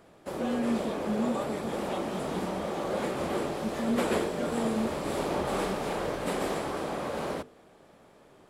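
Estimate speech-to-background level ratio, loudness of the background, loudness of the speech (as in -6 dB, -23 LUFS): -2.5 dB, -32.5 LUFS, -35.0 LUFS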